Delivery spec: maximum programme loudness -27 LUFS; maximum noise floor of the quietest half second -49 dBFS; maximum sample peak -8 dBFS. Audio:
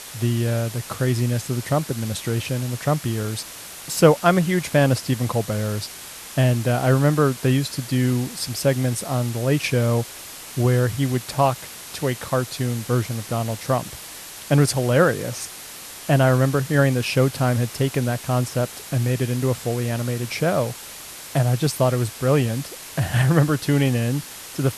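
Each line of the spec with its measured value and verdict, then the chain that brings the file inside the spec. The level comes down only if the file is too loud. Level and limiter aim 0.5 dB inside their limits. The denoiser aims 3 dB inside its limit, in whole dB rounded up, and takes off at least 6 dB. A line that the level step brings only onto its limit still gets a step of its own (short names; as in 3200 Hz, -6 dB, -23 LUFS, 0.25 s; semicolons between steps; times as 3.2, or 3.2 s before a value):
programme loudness -22.0 LUFS: fail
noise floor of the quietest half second -38 dBFS: fail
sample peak -2.0 dBFS: fail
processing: denoiser 9 dB, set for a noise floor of -38 dBFS; gain -5.5 dB; limiter -8.5 dBFS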